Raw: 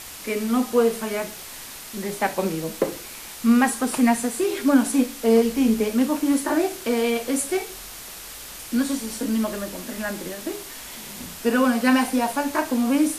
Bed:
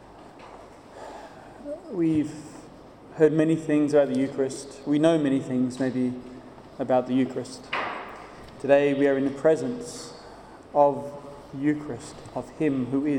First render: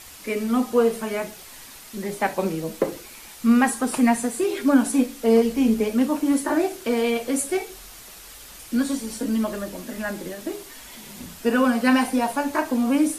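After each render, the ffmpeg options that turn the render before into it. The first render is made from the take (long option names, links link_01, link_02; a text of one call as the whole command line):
ffmpeg -i in.wav -af "afftdn=noise_reduction=6:noise_floor=-39" out.wav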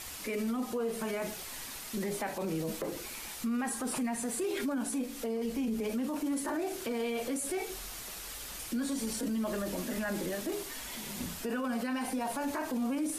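ffmpeg -i in.wav -af "acompressor=threshold=-25dB:ratio=6,alimiter=level_in=2.5dB:limit=-24dB:level=0:latency=1:release=15,volume=-2.5dB" out.wav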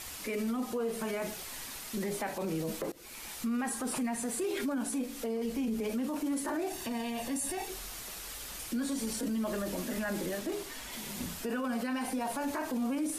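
ffmpeg -i in.wav -filter_complex "[0:a]asettb=1/sr,asplit=3[link_01][link_02][link_03];[link_01]atrim=end=6.704[link_04];[link_02]atrim=start=6.7:end=7.68,asetpts=PTS-STARTPTS,afade=type=in:duration=0.004:curve=qsin,afade=type=out:start_time=0.976:duration=0.004:curve=qsin,aecho=1:1:1.1:0.68,atrim=end_sample=43218[link_05];[link_03]atrim=start=7.676[link_06];[link_04][link_05]acrossfade=duration=0.004:curve1=hsin:curve2=qsin[link_07];[link_07][link_06]acrossfade=duration=0.004:curve1=qsin:curve2=hsin,asettb=1/sr,asplit=3[link_08][link_09][link_10];[link_08]atrim=end=10.394[link_11];[link_09]atrim=start=10.39:end=10.93,asetpts=PTS-STARTPTS,afade=type=in:duration=0.004:curve=qsin,afade=type=out:start_time=0.536:duration=0.004:curve=qsin,highshelf=frequency=8200:gain=-5.5[link_12];[link_10]atrim=start=10.926[link_13];[link_11][link_12]acrossfade=duration=0.004:curve1=hsin:curve2=qsin[link_14];[link_14][link_13]acrossfade=duration=0.004:curve1=qsin:curve2=hsin,asplit=2[link_15][link_16];[link_15]atrim=end=2.92,asetpts=PTS-STARTPTS,afade=type=out:start_time=2.916:duration=0.004:curve=hsin:silence=0.0668344[link_17];[link_16]atrim=start=2.92,asetpts=PTS-STARTPTS,afade=type=in:duration=0.52:curve=qsin:silence=0.0668344[link_18];[link_17][link_18]concat=n=2:v=0:a=1" out.wav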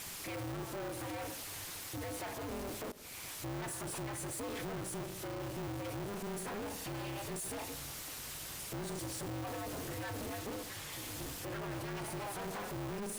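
ffmpeg -i in.wav -af "asoftclip=type=tanh:threshold=-38.5dB,aeval=exprs='val(0)*sgn(sin(2*PI*100*n/s))':channel_layout=same" out.wav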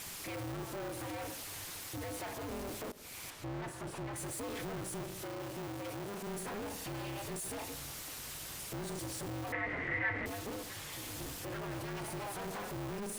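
ffmpeg -i in.wav -filter_complex "[0:a]asettb=1/sr,asplit=3[link_01][link_02][link_03];[link_01]atrim=end=3.304[link_04];[link_02]atrim=start=3.3:end=4.16,asetpts=PTS-STARTPTS,afade=type=in:duration=0.004:curve=qsin,afade=type=out:start_time=0.856:duration=0.004:curve=qsin,lowpass=frequency=2800:poles=1[link_05];[link_03]atrim=start=4.156[link_06];[link_04][link_05]acrossfade=duration=0.004:curve1=hsin:curve2=qsin[link_07];[link_07][link_06]acrossfade=duration=0.004:curve1=qsin:curve2=hsin,asettb=1/sr,asplit=3[link_08][link_09][link_10];[link_08]atrim=end=5.244[link_11];[link_09]atrim=start=5.24:end=6.27,asetpts=PTS-STARTPTS,afade=type=in:duration=0.004:curve=qsin,afade=type=out:start_time=1.026:duration=0.004:curve=qsin,lowshelf=frequency=95:gain=-11[link_12];[link_10]atrim=start=6.266[link_13];[link_11][link_12]acrossfade=duration=0.004:curve1=hsin:curve2=qsin[link_14];[link_14][link_13]acrossfade=duration=0.004:curve1=qsin:curve2=hsin,asettb=1/sr,asplit=3[link_15][link_16][link_17];[link_15]atrim=end=9.524[link_18];[link_16]atrim=start=9.52:end=10.26,asetpts=PTS-STARTPTS,afade=type=in:duration=0.004:curve=qsin,afade=type=out:start_time=0.736:duration=0.004:curve=qsin,lowpass=frequency=2000:width_type=q:width=15[link_19];[link_17]atrim=start=10.256[link_20];[link_18][link_19]acrossfade=duration=0.004:curve1=hsin:curve2=qsin[link_21];[link_21][link_20]acrossfade=duration=0.004:curve1=qsin:curve2=hsin" out.wav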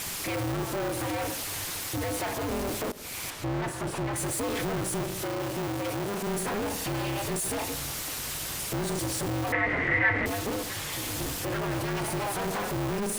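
ffmpeg -i in.wav -af "volume=10.5dB" out.wav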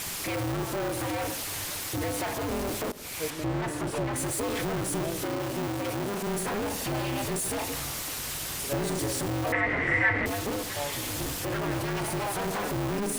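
ffmpeg -i in.wav -i bed.wav -filter_complex "[1:a]volume=-16.5dB[link_01];[0:a][link_01]amix=inputs=2:normalize=0" out.wav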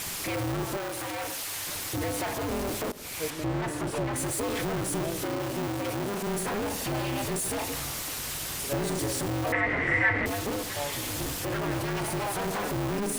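ffmpeg -i in.wav -filter_complex "[0:a]asettb=1/sr,asplit=3[link_01][link_02][link_03];[link_01]atrim=end=0.774[link_04];[link_02]atrim=start=0.77:end=1.67,asetpts=PTS-STARTPTS,afade=type=in:duration=0.004:curve=qsin,afade=type=out:start_time=0.896:duration=0.004:curve=qsin,lowshelf=frequency=450:gain=-9.5[link_05];[link_03]atrim=start=1.666[link_06];[link_04][link_05]acrossfade=duration=0.004:curve1=hsin:curve2=qsin[link_07];[link_07][link_06]acrossfade=duration=0.004:curve1=qsin:curve2=hsin" out.wav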